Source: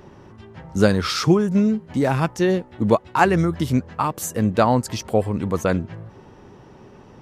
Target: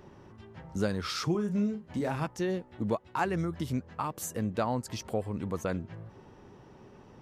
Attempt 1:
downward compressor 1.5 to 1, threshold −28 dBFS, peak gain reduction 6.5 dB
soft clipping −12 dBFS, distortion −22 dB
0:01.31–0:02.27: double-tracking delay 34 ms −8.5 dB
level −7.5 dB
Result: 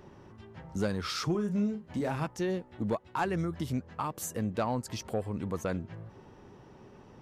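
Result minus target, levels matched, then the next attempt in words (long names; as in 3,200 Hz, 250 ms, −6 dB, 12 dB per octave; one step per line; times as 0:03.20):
soft clipping: distortion +16 dB
downward compressor 1.5 to 1, threshold −28 dBFS, peak gain reduction 6.5 dB
soft clipping −2.5 dBFS, distortion −38 dB
0:01.31–0:02.27: double-tracking delay 34 ms −8.5 dB
level −7.5 dB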